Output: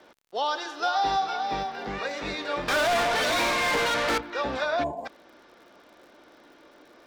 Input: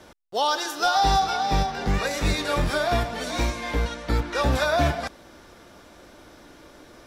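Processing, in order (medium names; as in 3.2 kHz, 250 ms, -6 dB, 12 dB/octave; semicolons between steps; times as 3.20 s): low-pass 8.8 kHz 12 dB/octave; three-band isolator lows -18 dB, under 220 Hz, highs -17 dB, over 5.1 kHz; 2.68–4.18 s: overdrive pedal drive 33 dB, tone 5.4 kHz, clips at -14 dBFS; 4.83–5.06 s: time-frequency box 1.1–6.6 kHz -27 dB; crackle 82 per s -44 dBFS; trim -4 dB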